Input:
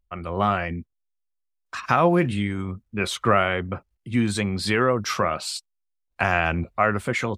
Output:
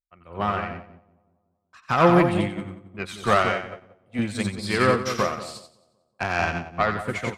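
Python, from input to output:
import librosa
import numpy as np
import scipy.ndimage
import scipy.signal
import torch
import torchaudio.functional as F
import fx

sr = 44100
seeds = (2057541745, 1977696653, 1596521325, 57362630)

p1 = fx.cheby_harmonics(x, sr, harmonics=(4, 5), levels_db=(-15, -14), full_scale_db=-3.0)
p2 = fx.low_shelf(p1, sr, hz=180.0, db=-9.0, at=(3.49, 4.19))
p3 = p2 + fx.echo_split(p2, sr, split_hz=900.0, low_ms=187, high_ms=90, feedback_pct=52, wet_db=-4.0, dry=0)
p4 = fx.upward_expand(p3, sr, threshold_db=-29.0, expansion=2.5)
y = F.gain(torch.from_numpy(p4), -1.5).numpy()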